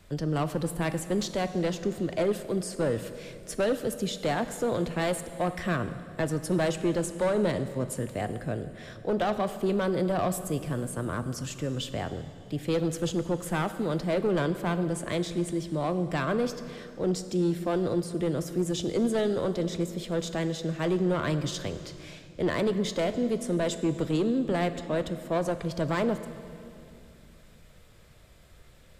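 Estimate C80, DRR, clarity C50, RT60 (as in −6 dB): 12.5 dB, 10.5 dB, 11.5 dB, 2.7 s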